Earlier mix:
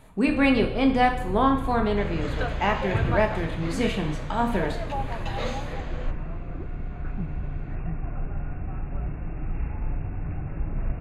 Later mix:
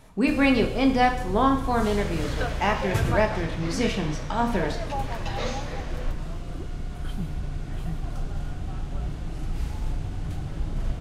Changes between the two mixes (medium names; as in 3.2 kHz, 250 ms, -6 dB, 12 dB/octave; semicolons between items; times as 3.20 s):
first sound: remove brick-wall FIR low-pass 2.8 kHz; master: add peaking EQ 5.5 kHz +14.5 dB 0.3 oct